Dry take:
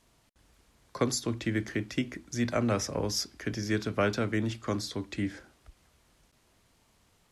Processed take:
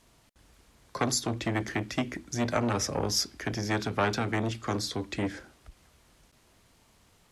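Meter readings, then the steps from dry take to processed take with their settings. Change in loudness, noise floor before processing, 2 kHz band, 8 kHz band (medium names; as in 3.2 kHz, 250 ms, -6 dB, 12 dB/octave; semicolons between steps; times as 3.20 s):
+1.0 dB, -67 dBFS, +2.0 dB, +3.5 dB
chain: transformer saturation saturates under 1.2 kHz; trim +4 dB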